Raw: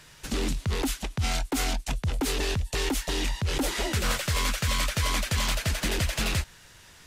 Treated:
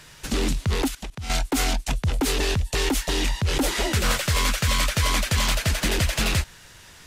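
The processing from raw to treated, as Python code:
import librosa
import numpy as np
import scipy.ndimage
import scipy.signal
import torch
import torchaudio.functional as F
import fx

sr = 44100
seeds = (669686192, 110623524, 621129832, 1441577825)

y = fx.level_steps(x, sr, step_db=18, at=(0.88, 1.3))
y = F.gain(torch.from_numpy(y), 4.5).numpy()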